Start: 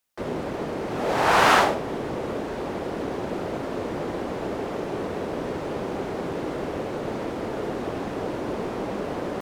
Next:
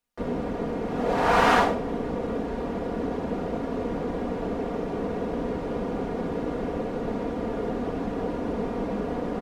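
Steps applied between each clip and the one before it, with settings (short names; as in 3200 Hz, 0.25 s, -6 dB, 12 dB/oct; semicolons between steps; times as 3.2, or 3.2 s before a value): tilt -2 dB/oct; comb 4.2 ms, depth 55%; gain -3.5 dB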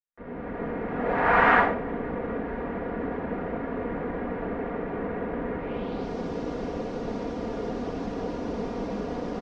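opening faded in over 0.68 s; low-pass sweep 1900 Hz -> 5700 Hz, 5.58–6.11; gain -2.5 dB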